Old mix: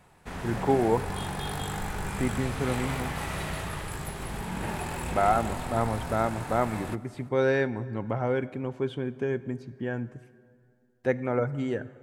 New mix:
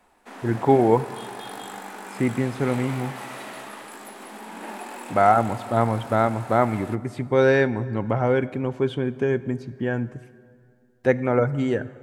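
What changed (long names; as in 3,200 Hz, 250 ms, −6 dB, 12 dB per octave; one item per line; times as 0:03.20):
speech +6.5 dB
background: add Chebyshev high-pass with heavy ripple 200 Hz, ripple 3 dB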